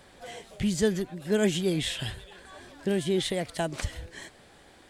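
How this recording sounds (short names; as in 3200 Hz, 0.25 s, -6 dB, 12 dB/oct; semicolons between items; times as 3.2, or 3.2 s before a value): noise floor -55 dBFS; spectral tilt -4.5 dB/oct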